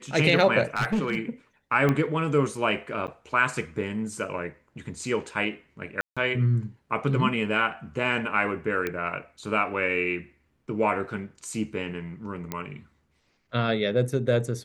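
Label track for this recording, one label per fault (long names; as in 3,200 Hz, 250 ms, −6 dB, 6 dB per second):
0.750000	1.180000	clipping −20.5 dBFS
1.890000	1.890000	click −12 dBFS
3.070000	3.080000	drop-out 8.9 ms
6.010000	6.170000	drop-out 156 ms
8.870000	8.870000	click −15 dBFS
12.520000	12.520000	click −15 dBFS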